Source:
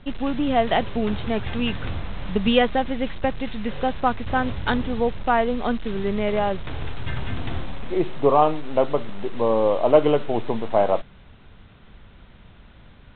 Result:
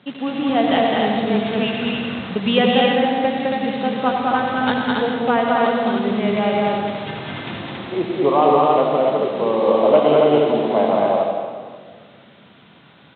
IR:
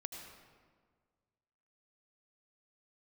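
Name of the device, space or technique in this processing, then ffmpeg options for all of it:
stadium PA: -filter_complex "[0:a]highpass=frequency=150:width=0.5412,highpass=frequency=150:width=1.3066,equalizer=frequency=3400:width_type=o:width=0.77:gain=3,aecho=1:1:209.9|277:0.708|0.708[link_01];[1:a]atrim=start_sample=2205[link_02];[link_01][link_02]afir=irnorm=-1:irlink=0,volume=4dB"

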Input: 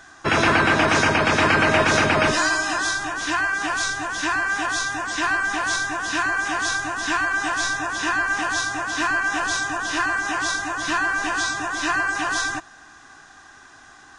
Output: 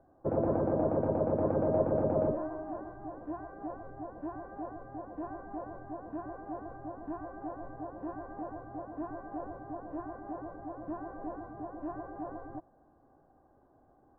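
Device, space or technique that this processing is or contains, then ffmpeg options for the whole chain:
under water: -af "lowpass=frequency=700:width=0.5412,lowpass=frequency=700:width=1.3066,equalizer=frequency=540:width_type=o:width=0.27:gain=10.5,volume=-8.5dB"

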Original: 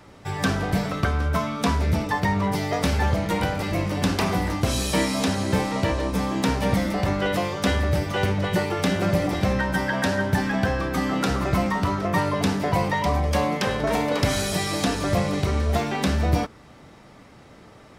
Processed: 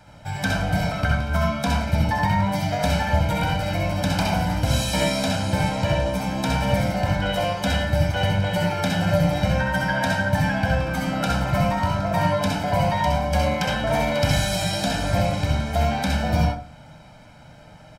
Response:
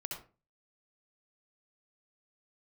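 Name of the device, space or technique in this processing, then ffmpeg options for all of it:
microphone above a desk: -filter_complex "[0:a]aecho=1:1:1.3:0.81[link_01];[1:a]atrim=start_sample=2205[link_02];[link_01][link_02]afir=irnorm=-1:irlink=0"

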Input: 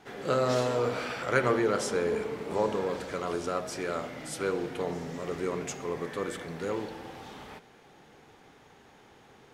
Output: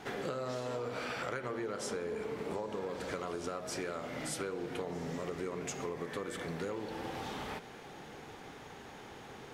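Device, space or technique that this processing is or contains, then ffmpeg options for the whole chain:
serial compression, leveller first: -af "acompressor=threshold=-29dB:ratio=2.5,acompressor=threshold=-43dB:ratio=5,volume=6.5dB"

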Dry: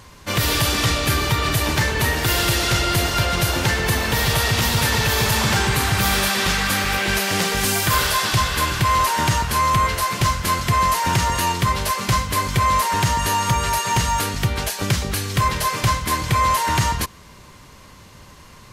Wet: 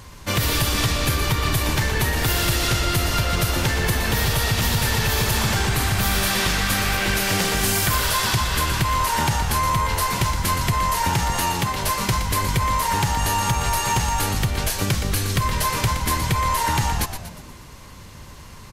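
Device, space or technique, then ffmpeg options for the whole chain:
ASMR close-microphone chain: -filter_complex "[0:a]lowshelf=frequency=140:gain=6,acompressor=threshold=-18dB:ratio=6,highshelf=frequency=8100:gain=4,asettb=1/sr,asplit=3[link_01][link_02][link_03];[link_01]atrim=end=11.334[link_04];[link_02]atrim=start=11.33:end=11.84,asetpts=PTS-STARTPTS,afade=type=in:duration=0.004:curve=qsin,afade=type=out:start_time=0.506:duration=0.004:curve=qsin,highpass=120[link_05];[link_03]atrim=start=11.836[link_06];[link_04][link_05]acrossfade=duration=0.004:curve1=hsin:curve2=qsin[link_07];[link_07][link_06]acrossfade=duration=0.004:curve1=qsin:curve2=hsin,asplit=7[link_08][link_09][link_10][link_11][link_12][link_13][link_14];[link_09]adelay=119,afreqshift=-79,volume=-9dB[link_15];[link_10]adelay=238,afreqshift=-158,volume=-15.2dB[link_16];[link_11]adelay=357,afreqshift=-237,volume=-21.4dB[link_17];[link_12]adelay=476,afreqshift=-316,volume=-27.6dB[link_18];[link_13]adelay=595,afreqshift=-395,volume=-33.8dB[link_19];[link_14]adelay=714,afreqshift=-474,volume=-40dB[link_20];[link_08][link_15][link_16][link_17][link_18][link_19][link_20]amix=inputs=7:normalize=0"

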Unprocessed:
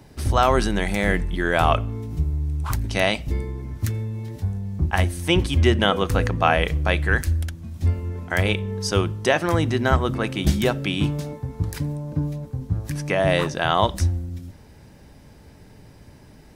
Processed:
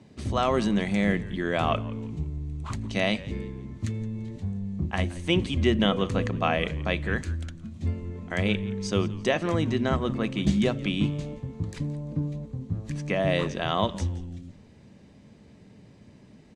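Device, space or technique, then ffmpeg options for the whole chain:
car door speaker: -filter_complex "[0:a]highpass=94,equalizer=frequency=210:width_type=q:width=4:gain=8,equalizer=frequency=850:width_type=q:width=4:gain=-6,equalizer=frequency=1500:width_type=q:width=4:gain=-7,equalizer=frequency=5300:width_type=q:width=4:gain=-7,lowpass=frequency=7500:width=0.5412,lowpass=frequency=7500:width=1.3066,asplit=4[link_01][link_02][link_03][link_04];[link_02]adelay=171,afreqshift=-94,volume=-18.5dB[link_05];[link_03]adelay=342,afreqshift=-188,volume=-27.4dB[link_06];[link_04]adelay=513,afreqshift=-282,volume=-36.2dB[link_07];[link_01][link_05][link_06][link_07]amix=inputs=4:normalize=0,volume=-4.5dB"

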